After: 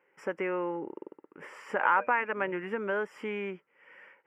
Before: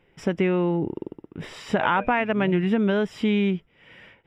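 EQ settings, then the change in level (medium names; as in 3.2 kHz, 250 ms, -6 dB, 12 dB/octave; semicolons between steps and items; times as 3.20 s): resonant high-pass 620 Hz, resonance Q 4.7; treble shelf 2.1 kHz -9 dB; static phaser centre 1.6 kHz, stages 4; 0.0 dB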